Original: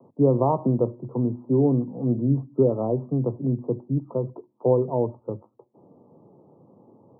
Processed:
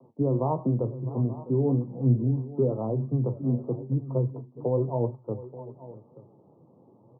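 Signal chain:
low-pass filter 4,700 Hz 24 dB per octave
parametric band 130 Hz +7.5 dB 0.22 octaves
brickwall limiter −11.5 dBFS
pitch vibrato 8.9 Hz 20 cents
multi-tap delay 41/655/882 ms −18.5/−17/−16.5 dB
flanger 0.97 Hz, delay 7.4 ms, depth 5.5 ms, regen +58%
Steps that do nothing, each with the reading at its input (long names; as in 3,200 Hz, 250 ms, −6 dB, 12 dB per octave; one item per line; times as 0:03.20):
low-pass filter 4,700 Hz: nothing at its input above 960 Hz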